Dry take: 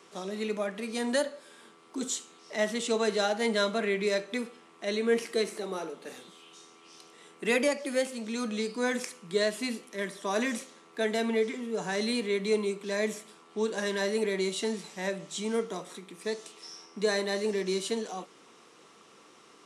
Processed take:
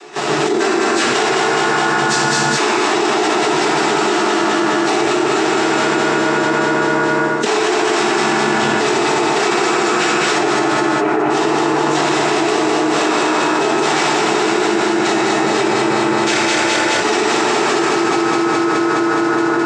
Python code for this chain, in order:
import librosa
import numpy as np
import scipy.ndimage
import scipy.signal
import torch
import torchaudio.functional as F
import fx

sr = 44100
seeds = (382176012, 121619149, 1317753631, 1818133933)

y = np.r_[np.sort(x[:len(x) // 128 * 128].reshape(-1, 128), axis=1).ravel(), x[len(x) // 128 * 128:]]
y = fx.lowpass(y, sr, hz=1800.0, slope=6, at=(10.38, 11.3))
y = fx.noise_reduce_blind(y, sr, reduce_db=26)
y = scipy.signal.sosfilt(scipy.signal.butter(2, 280.0, 'highpass', fs=sr, output='sos'), y)
y = fx.noise_vocoder(y, sr, seeds[0], bands=12)
y = fx.echo_feedback(y, sr, ms=209, feedback_pct=56, wet_db=-4)
y = fx.rev_fdn(y, sr, rt60_s=3.0, lf_ratio=1.0, hf_ratio=0.45, size_ms=41.0, drr_db=-3.0)
y = fx.env_flatten(y, sr, amount_pct=100)
y = F.gain(torch.from_numpy(y), 4.0).numpy()